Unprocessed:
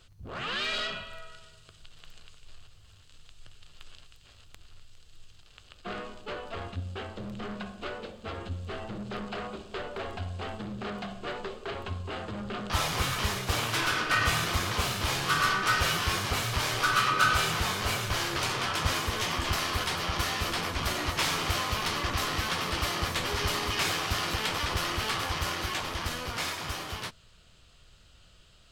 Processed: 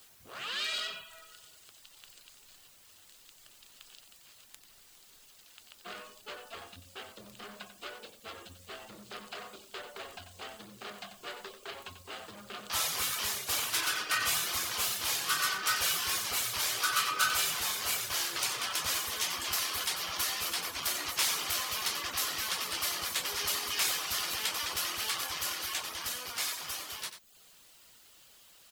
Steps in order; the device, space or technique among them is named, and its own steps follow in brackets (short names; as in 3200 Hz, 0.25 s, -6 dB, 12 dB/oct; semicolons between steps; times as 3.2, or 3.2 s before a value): turntable without a phono preamp (RIAA curve recording; white noise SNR 24 dB); reverb removal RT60 0.57 s; echo 91 ms -10.5 dB; gain -6.5 dB